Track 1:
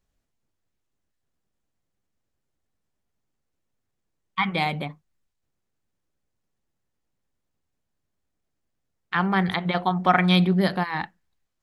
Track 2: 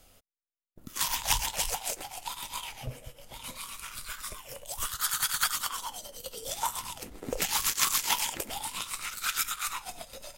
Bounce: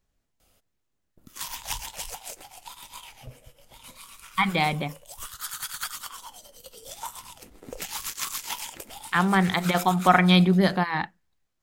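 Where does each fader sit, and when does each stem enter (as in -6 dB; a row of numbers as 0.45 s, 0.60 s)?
+1.0 dB, -5.5 dB; 0.00 s, 0.40 s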